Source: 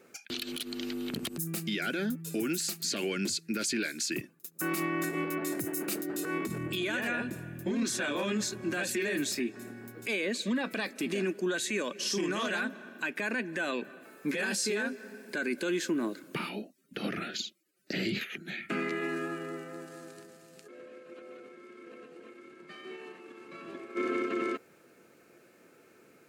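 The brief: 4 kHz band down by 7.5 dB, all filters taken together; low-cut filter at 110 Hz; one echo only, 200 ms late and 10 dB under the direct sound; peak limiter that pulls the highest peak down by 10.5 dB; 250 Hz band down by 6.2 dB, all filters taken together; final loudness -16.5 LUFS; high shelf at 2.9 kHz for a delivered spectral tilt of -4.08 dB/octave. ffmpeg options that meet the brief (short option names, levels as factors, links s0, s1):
-af "highpass=110,equalizer=f=250:t=o:g=-8.5,highshelf=f=2900:g=-5,equalizer=f=4000:t=o:g=-5.5,alimiter=level_in=2.99:limit=0.0631:level=0:latency=1,volume=0.335,aecho=1:1:200:0.316,volume=20"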